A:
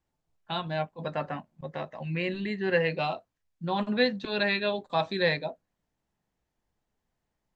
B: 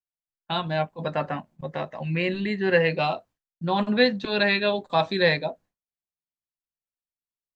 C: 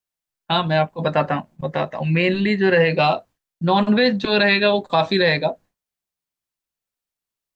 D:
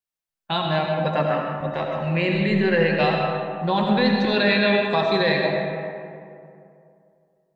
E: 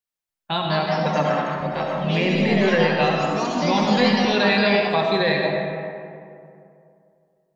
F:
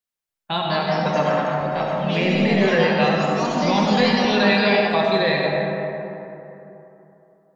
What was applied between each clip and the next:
downward expander −52 dBFS; level +5 dB
brickwall limiter −14.5 dBFS, peak gain reduction 8 dB; level +8 dB
convolution reverb RT60 2.5 s, pre-delay 40 ms, DRR 0.5 dB; level −5 dB
delay with pitch and tempo change per echo 277 ms, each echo +3 semitones, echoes 3, each echo −6 dB
dense smooth reverb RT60 3.1 s, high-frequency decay 0.4×, DRR 6.5 dB

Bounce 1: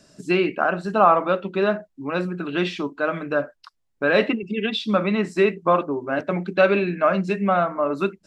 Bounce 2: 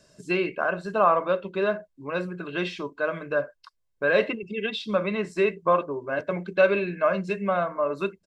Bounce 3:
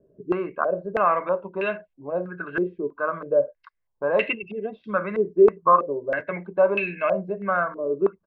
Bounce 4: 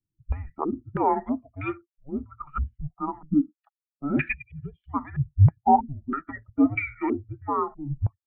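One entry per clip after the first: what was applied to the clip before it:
comb filter 1.9 ms, depth 46%; level −5 dB
low-pass on a step sequencer 3.1 Hz 410–2,600 Hz; level −3 dB
spectral dynamics exaggerated over time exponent 1.5; single-sideband voice off tune −290 Hz 250–3,100 Hz

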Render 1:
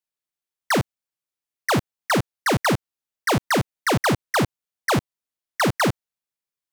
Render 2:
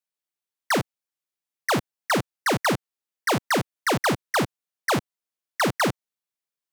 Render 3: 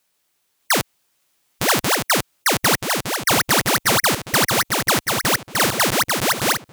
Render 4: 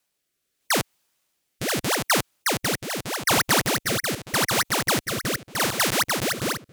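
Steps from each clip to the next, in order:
high-pass filter 170 Hz 6 dB per octave; level −1.5 dB
feedback delay that plays each chunk backwards 606 ms, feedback 56%, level −2 dB; every bin compressed towards the loudest bin 2 to 1; level +6.5 dB
rotating-speaker cabinet horn 0.8 Hz; level −2.5 dB

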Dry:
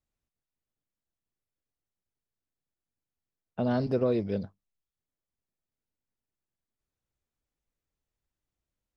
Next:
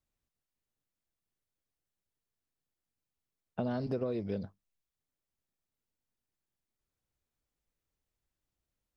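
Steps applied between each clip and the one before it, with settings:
downward compressor 10 to 1, threshold −30 dBFS, peak gain reduction 9 dB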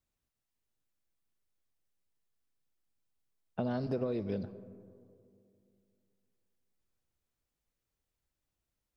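convolution reverb RT60 2.5 s, pre-delay 30 ms, DRR 14.5 dB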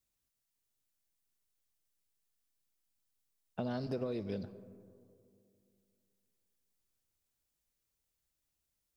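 high-shelf EQ 3,400 Hz +10 dB
level −3.5 dB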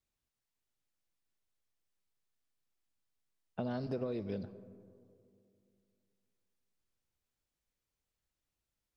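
low-pass filter 3,600 Hz 6 dB per octave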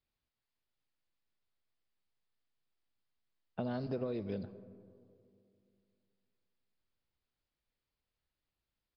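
downsampling to 11,025 Hz

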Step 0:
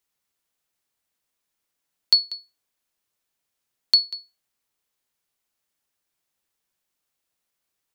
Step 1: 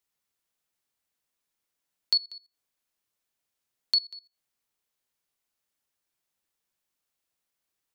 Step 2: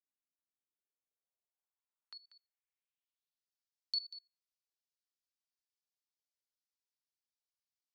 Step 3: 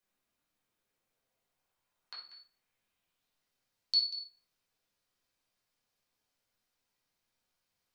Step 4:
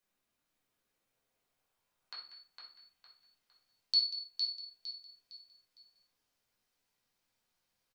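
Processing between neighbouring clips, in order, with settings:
output level in coarse steps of 21 dB
output level in coarse steps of 15 dB; tape wow and flutter 19 cents; band-pass filter sweep 280 Hz → 4,900 Hz, 0:00.53–0:03.54; level −2.5 dB
convolution reverb RT60 0.50 s, pre-delay 8 ms, DRR −5 dB; level +7 dB
repeating echo 458 ms, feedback 35%, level −6 dB

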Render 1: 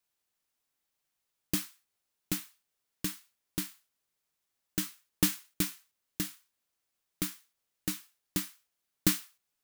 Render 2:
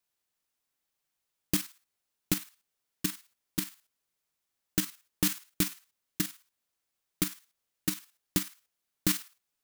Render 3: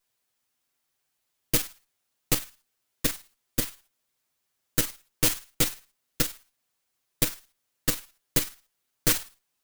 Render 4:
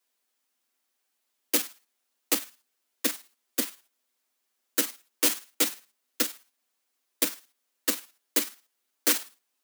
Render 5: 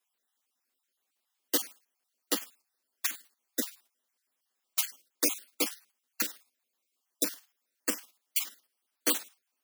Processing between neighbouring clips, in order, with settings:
output level in coarse steps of 10 dB; level +6 dB
lower of the sound and its delayed copy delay 7.9 ms; level +7 dB
Butterworth high-pass 210 Hz 96 dB per octave
time-frequency cells dropped at random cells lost 36%; level −2 dB

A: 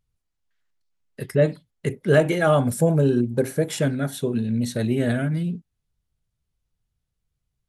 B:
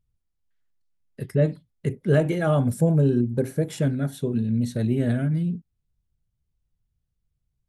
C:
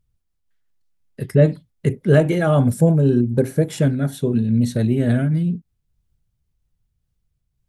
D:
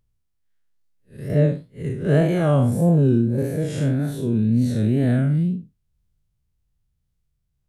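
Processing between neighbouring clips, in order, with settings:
low-shelf EQ 360 Hz +10 dB; level −7.5 dB
amplitude modulation by smooth noise, depth 50%; level +7.5 dB
spectrum smeared in time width 134 ms; tape wow and flutter 71 cents

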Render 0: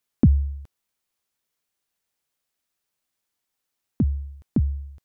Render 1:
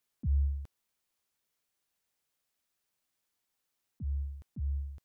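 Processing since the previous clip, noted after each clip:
volume swells 221 ms
level −2 dB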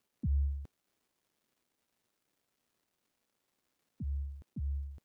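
surface crackle 540 per second −64 dBFS
parametric band 270 Hz +8.5 dB 2.5 octaves
level −4.5 dB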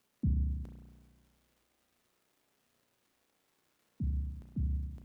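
downward compressor, threshold −31 dBFS, peak gain reduction 4 dB
spring reverb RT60 1.6 s, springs 33 ms, chirp 30 ms, DRR 1.5 dB
level +4.5 dB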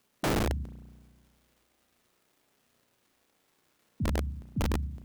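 wrap-around overflow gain 28 dB
level +4.5 dB

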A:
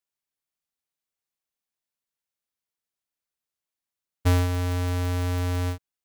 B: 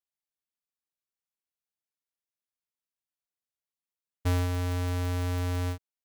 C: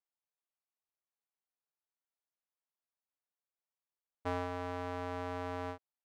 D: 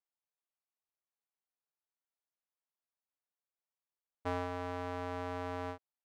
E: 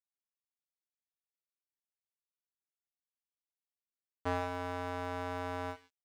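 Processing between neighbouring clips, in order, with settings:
leveller curve on the samples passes 1; level −6.5 dB
resonant band-pass 820 Hz, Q 0.97; level +1 dB
no processing that can be heard
reverb whose tail is shaped and stops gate 240 ms flat, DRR 8 dB; dead-zone distortion −49.5 dBFS; level +2.5 dB

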